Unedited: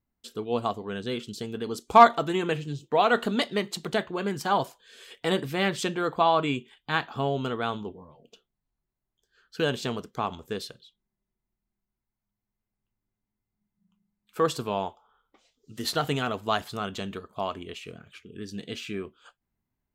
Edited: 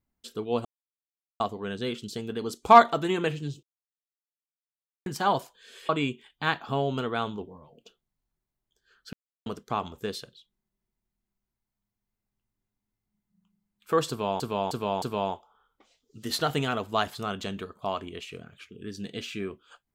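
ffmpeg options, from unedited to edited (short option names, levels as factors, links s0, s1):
-filter_complex "[0:a]asplit=10[s0][s1][s2][s3][s4][s5][s6][s7][s8][s9];[s0]atrim=end=0.65,asetpts=PTS-STARTPTS,afade=t=out:st=0.646:d=0.004:c=hsin,apad=pad_dur=0.75[s10];[s1]atrim=start=0.65:end=2.88,asetpts=PTS-STARTPTS,afade=t=in:d=0.004:c=hsin,afade=t=out:st=2.226:d=0.004:c=hsin[s11];[s2]atrim=start=2.88:end=4.31,asetpts=PTS-STARTPTS,volume=0[s12];[s3]atrim=start=4.31:end=5.142,asetpts=PTS-STARTPTS,afade=t=in:d=0.004:c=hsin[s13];[s4]atrim=start=6.358:end=9.6,asetpts=PTS-STARTPTS,afade=t=out:st=3.238:d=0.004:c=hsin[s14];[s5]atrim=start=9.6:end=9.93,asetpts=PTS-STARTPTS,volume=0[s15];[s6]atrim=start=9.93:end=14.872,asetpts=PTS-STARTPTS,afade=t=in:d=0.004:c=hsin[s16];[s7]atrim=start=14.558:end=14.872[s17];[s8]atrim=start=14.558:end=14.872[s18];[s9]atrim=start=14.558[s19];[s10][s11][s12][s13]concat=n=4:v=0:a=1[s20];[s14][s15][s16]concat=n=3:v=0:a=1[s21];[s20][s21]acrossfade=d=0.004:c1=hsin:c2=hsin[s22];[s22][s17]acrossfade=d=0.004:c1=hsin:c2=hsin[s23];[s23][s18]acrossfade=d=0.004:c1=hsin:c2=hsin[s24];[s24][s19]acrossfade=d=0.004:c1=hsin:c2=hsin"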